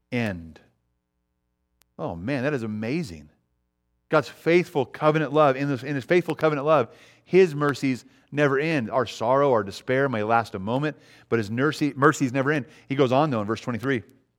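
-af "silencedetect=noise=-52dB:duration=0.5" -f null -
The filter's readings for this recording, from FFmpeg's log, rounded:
silence_start: 0.66
silence_end: 1.82 | silence_duration: 1.16
silence_start: 3.33
silence_end: 4.11 | silence_duration: 0.77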